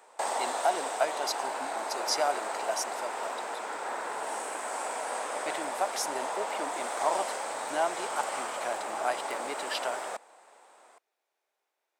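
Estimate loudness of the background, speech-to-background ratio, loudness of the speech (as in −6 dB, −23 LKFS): −34.5 LKFS, 0.0 dB, −34.5 LKFS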